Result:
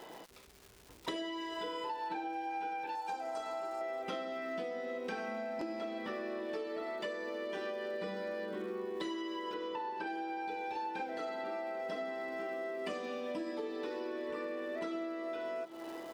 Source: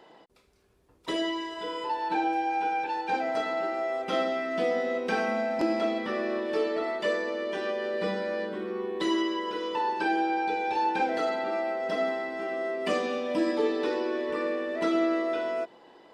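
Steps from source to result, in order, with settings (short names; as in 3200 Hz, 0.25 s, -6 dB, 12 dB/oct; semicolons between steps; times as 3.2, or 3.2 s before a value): crackle 410/s -49 dBFS; 2.95–3.81 graphic EQ 125/250/500/1000/2000/4000/8000 Hz -10/-7/-5/+4/-10/-3/+8 dB; echo 0.793 s -23 dB; compressor 16:1, threshold -40 dBFS, peak gain reduction 19 dB; 9.54–10.07 high shelf 4800 Hz -10 dB; gain +4 dB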